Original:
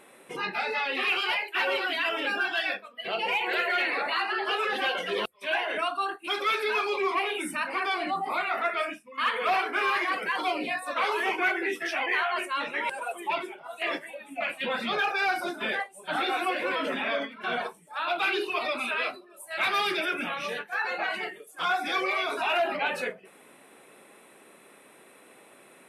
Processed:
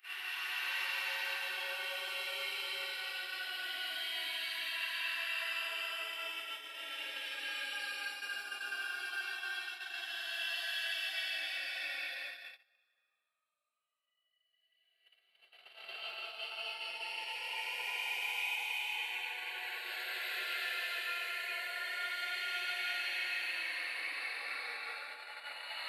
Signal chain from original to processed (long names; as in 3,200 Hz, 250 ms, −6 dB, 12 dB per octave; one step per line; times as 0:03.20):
extreme stretch with random phases 10×, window 0.25 s, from 0:01.51
first difference
noise gate −42 dBFS, range −28 dB